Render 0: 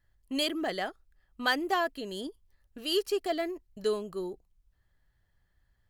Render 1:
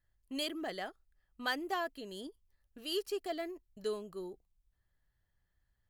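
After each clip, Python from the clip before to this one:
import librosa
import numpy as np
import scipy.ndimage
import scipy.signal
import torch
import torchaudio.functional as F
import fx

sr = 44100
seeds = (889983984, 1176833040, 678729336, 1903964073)

y = fx.high_shelf(x, sr, hz=11000.0, db=3.5)
y = F.gain(torch.from_numpy(y), -7.5).numpy()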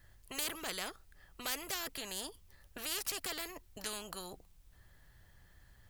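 y = fx.spectral_comp(x, sr, ratio=4.0)
y = F.gain(torch.from_numpy(y), 4.0).numpy()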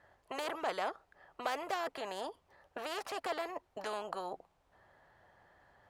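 y = fx.bandpass_q(x, sr, hz=740.0, q=1.6)
y = F.gain(torch.from_numpy(y), 12.0).numpy()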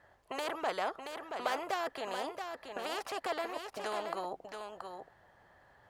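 y = x + 10.0 ** (-6.5 / 20.0) * np.pad(x, (int(677 * sr / 1000.0), 0))[:len(x)]
y = F.gain(torch.from_numpy(y), 1.5).numpy()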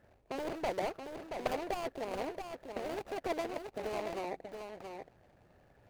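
y = scipy.signal.medfilt(x, 41)
y = F.gain(torch.from_numpy(y), 4.5).numpy()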